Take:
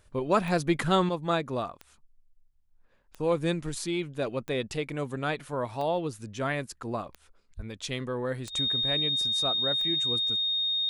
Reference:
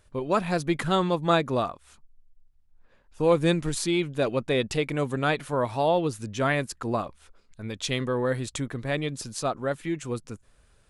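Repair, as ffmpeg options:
-filter_complex "[0:a]adeclick=t=4,bandreject=f=3700:w=30,asplit=3[s0][s1][s2];[s0]afade=t=out:st=7.56:d=0.02[s3];[s1]highpass=f=140:w=0.5412,highpass=f=140:w=1.3066,afade=t=in:st=7.56:d=0.02,afade=t=out:st=7.68:d=0.02[s4];[s2]afade=t=in:st=7.68:d=0.02[s5];[s3][s4][s5]amix=inputs=3:normalize=0,asetnsamples=n=441:p=0,asendcmd='1.09 volume volume 5.5dB',volume=1"

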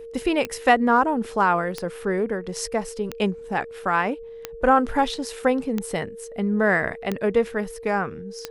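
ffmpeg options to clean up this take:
-af "adeclick=t=4,bandreject=f=460:w=30"

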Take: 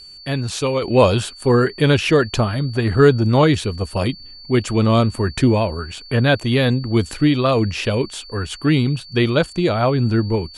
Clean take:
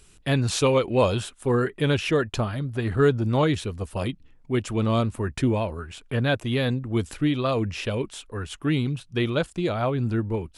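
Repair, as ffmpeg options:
-af "bandreject=f=4500:w=30,asetnsamples=n=441:p=0,asendcmd='0.82 volume volume -7.5dB',volume=1"

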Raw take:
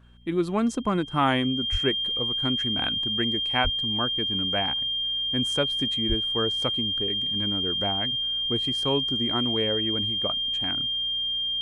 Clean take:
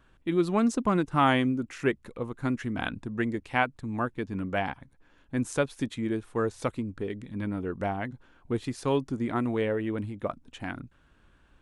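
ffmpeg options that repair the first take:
-filter_complex "[0:a]bandreject=f=59.8:t=h:w=4,bandreject=f=119.6:t=h:w=4,bandreject=f=179.4:t=h:w=4,bandreject=f=239.2:t=h:w=4,bandreject=f=3200:w=30,asplit=3[s0][s1][s2];[s0]afade=t=out:st=1.71:d=0.02[s3];[s1]highpass=f=140:w=0.5412,highpass=f=140:w=1.3066,afade=t=in:st=1.71:d=0.02,afade=t=out:st=1.83:d=0.02[s4];[s2]afade=t=in:st=1.83:d=0.02[s5];[s3][s4][s5]amix=inputs=3:normalize=0,asplit=3[s6][s7][s8];[s6]afade=t=out:st=3.63:d=0.02[s9];[s7]highpass=f=140:w=0.5412,highpass=f=140:w=1.3066,afade=t=in:st=3.63:d=0.02,afade=t=out:st=3.75:d=0.02[s10];[s8]afade=t=in:st=3.75:d=0.02[s11];[s9][s10][s11]amix=inputs=3:normalize=0,asplit=3[s12][s13][s14];[s12]afade=t=out:st=6.08:d=0.02[s15];[s13]highpass=f=140:w=0.5412,highpass=f=140:w=1.3066,afade=t=in:st=6.08:d=0.02,afade=t=out:st=6.2:d=0.02[s16];[s14]afade=t=in:st=6.2:d=0.02[s17];[s15][s16][s17]amix=inputs=3:normalize=0"

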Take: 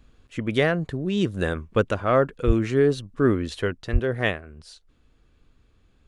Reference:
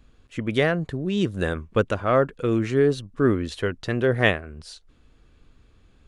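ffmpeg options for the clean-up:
-filter_complex "[0:a]asplit=3[s0][s1][s2];[s0]afade=t=out:st=2.46:d=0.02[s3];[s1]highpass=f=140:w=0.5412,highpass=f=140:w=1.3066,afade=t=in:st=2.46:d=0.02,afade=t=out:st=2.58:d=0.02[s4];[s2]afade=t=in:st=2.58:d=0.02[s5];[s3][s4][s5]amix=inputs=3:normalize=0,asplit=3[s6][s7][s8];[s6]afade=t=out:st=3.92:d=0.02[s9];[s7]highpass=f=140:w=0.5412,highpass=f=140:w=1.3066,afade=t=in:st=3.92:d=0.02,afade=t=out:st=4.04:d=0.02[s10];[s8]afade=t=in:st=4.04:d=0.02[s11];[s9][s10][s11]amix=inputs=3:normalize=0,asetnsamples=n=441:p=0,asendcmd='3.73 volume volume 4.5dB',volume=1"

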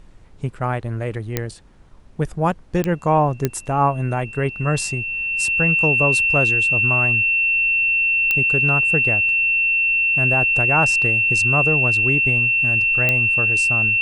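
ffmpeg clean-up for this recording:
-af "adeclick=t=4,bandreject=f=2700:w=30,agate=range=0.0891:threshold=0.0224"

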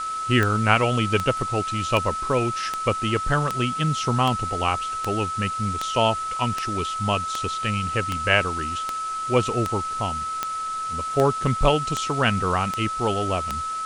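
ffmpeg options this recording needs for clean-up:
-af "adeclick=t=4,bandreject=f=1300:w=30,afwtdn=0.01"

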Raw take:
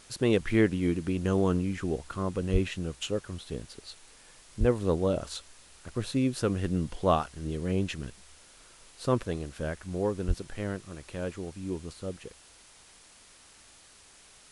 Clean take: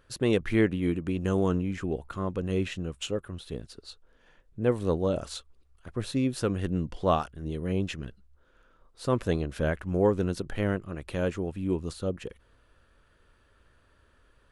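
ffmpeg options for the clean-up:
-filter_complex "[0:a]asplit=3[s0][s1][s2];[s0]afade=t=out:st=2.52:d=0.02[s3];[s1]highpass=f=140:w=0.5412,highpass=f=140:w=1.3066,afade=t=in:st=2.52:d=0.02,afade=t=out:st=2.64:d=0.02[s4];[s2]afade=t=in:st=2.64:d=0.02[s5];[s3][s4][s5]amix=inputs=3:normalize=0,asplit=3[s6][s7][s8];[s6]afade=t=out:st=4.59:d=0.02[s9];[s7]highpass=f=140:w=0.5412,highpass=f=140:w=1.3066,afade=t=in:st=4.59:d=0.02,afade=t=out:st=4.71:d=0.02[s10];[s8]afade=t=in:st=4.71:d=0.02[s11];[s9][s10][s11]amix=inputs=3:normalize=0,asplit=3[s12][s13][s14];[s12]afade=t=out:st=10.27:d=0.02[s15];[s13]highpass=f=140:w=0.5412,highpass=f=140:w=1.3066,afade=t=in:st=10.27:d=0.02,afade=t=out:st=10.39:d=0.02[s16];[s14]afade=t=in:st=10.39:d=0.02[s17];[s15][s16][s17]amix=inputs=3:normalize=0,afwtdn=0.0022,asetnsamples=n=441:p=0,asendcmd='9.23 volume volume 6dB',volume=1"

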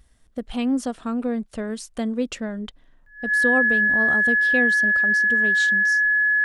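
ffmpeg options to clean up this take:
-af "bandreject=f=1700:w=30"

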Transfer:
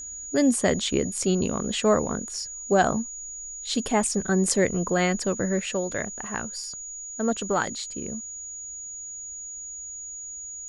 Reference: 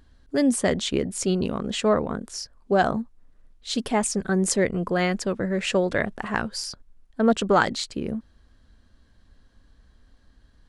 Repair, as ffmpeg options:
-af "bandreject=f=6800:w=30,asetnsamples=n=441:p=0,asendcmd='5.6 volume volume 6dB',volume=1"

